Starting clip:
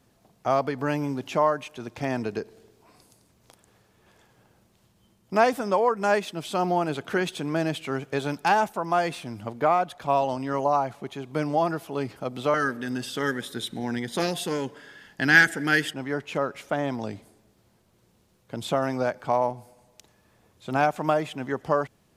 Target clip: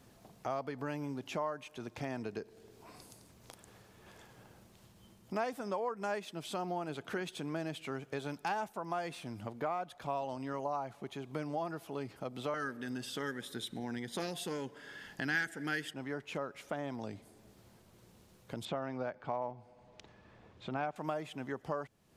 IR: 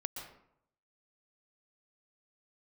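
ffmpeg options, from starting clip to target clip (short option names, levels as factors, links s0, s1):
-filter_complex "[0:a]asettb=1/sr,asplit=3[s0][s1][s2];[s0]atrim=end=18.654[s3];[s1]atrim=start=18.65:end=20.96,asetpts=PTS-STARTPTS,afade=t=in:d=0.004:c=qsin,afade=t=out:st=2.306:d=0.004:c=qsin,lowpass=3400[s4];[s2]atrim=start=20.956[s5];[s3][s4]acrossfade=d=0.004:c1=hsin:c2=qsin[s6];[s6][s5]acrossfade=d=0.004:c1=qsin:c2=hsin,acompressor=threshold=0.00316:ratio=2,volume=1.33"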